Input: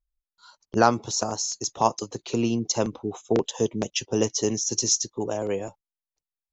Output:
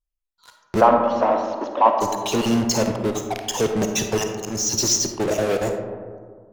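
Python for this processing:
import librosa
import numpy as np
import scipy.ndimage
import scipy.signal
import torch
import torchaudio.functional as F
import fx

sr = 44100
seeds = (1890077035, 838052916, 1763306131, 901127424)

p1 = fx.spec_dropout(x, sr, seeds[0], share_pct=27)
p2 = fx.auto_swell(p1, sr, attack_ms=304.0, at=(4.18, 4.74))
p3 = fx.fuzz(p2, sr, gain_db=41.0, gate_db=-46.0)
p4 = p2 + (p3 * librosa.db_to_amplitude(-8.0))
p5 = fx.cabinet(p4, sr, low_hz=250.0, low_slope=24, high_hz=2700.0, hz=(270.0, 400.0, 570.0, 1000.0, 2200.0), db=(6, -7, 9, 8, -4), at=(0.8, 2.0), fade=0.02)
p6 = fx.rev_freeverb(p5, sr, rt60_s=1.9, hf_ratio=0.3, predelay_ms=10, drr_db=4.5)
y = p6 * librosa.db_to_amplitude(-2.5)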